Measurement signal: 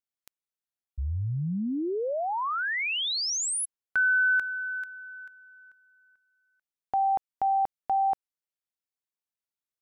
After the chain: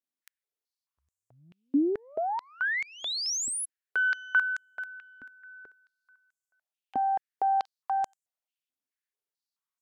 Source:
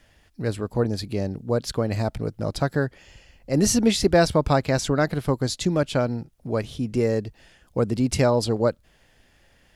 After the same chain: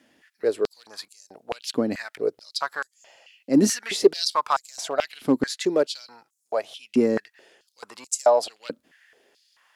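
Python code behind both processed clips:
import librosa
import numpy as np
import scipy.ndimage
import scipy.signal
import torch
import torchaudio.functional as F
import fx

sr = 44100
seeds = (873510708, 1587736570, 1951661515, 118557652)

y = fx.cheby_harmonics(x, sr, harmonics=(8,), levels_db=(-35,), full_scale_db=-5.5)
y = np.clip(y, -10.0 ** (-11.5 / 20.0), 10.0 ** (-11.5 / 20.0))
y = fx.filter_held_highpass(y, sr, hz=4.6, low_hz=260.0, high_hz=7100.0)
y = y * 10.0 ** (-3.0 / 20.0)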